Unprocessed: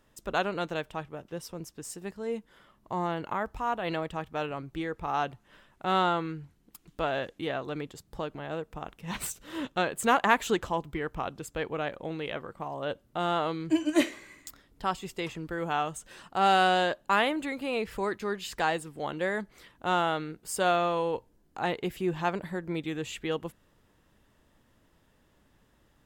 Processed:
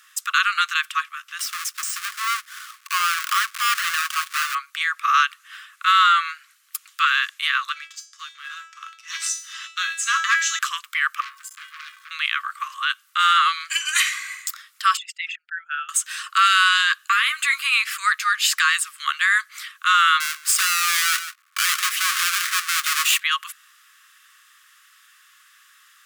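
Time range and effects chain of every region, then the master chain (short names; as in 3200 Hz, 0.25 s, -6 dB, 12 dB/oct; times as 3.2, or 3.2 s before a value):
1.39–4.55 half-waves squared off + de-esser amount 85%
7.72–10.59 synth low-pass 6000 Hz, resonance Q 3.6 + resonator 330 Hz, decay 0.53 s, mix 90% + sample leveller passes 1
11.2–12.11 zero-crossing step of -43 dBFS + resonator 220 Hz, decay 0.42 s, harmonics odd, mix 90% + core saturation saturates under 2500 Hz
14.97–15.89 formant sharpening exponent 2 + Butterworth band-stop 1100 Hz, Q 1.5 + RIAA curve playback
16.98–17.72 HPF 180 Hz + compressor 12:1, threshold -28 dBFS + doubler 13 ms -8 dB
20.2–23.2 half-waves squared off + echo 0.145 s -18 dB + mismatched tape noise reduction decoder only
whole clip: Chebyshev high-pass 1100 Hz, order 10; bell 10000 Hz +3 dB 1.7 oct; maximiser +26 dB; gain -7 dB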